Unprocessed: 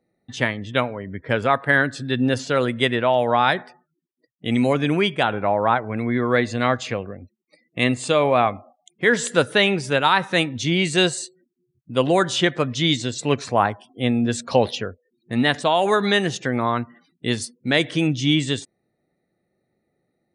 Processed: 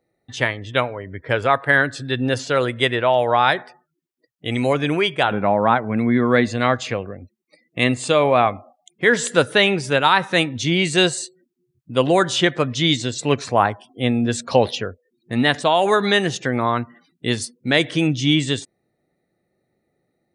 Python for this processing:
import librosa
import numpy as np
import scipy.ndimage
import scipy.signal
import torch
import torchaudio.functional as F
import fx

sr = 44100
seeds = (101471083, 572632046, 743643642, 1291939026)

y = fx.peak_eq(x, sr, hz=210.0, db=fx.steps((0.0, -10.0), (5.31, 5.5), (6.48, -2.0)), octaves=0.59)
y = y * 10.0 ** (2.0 / 20.0)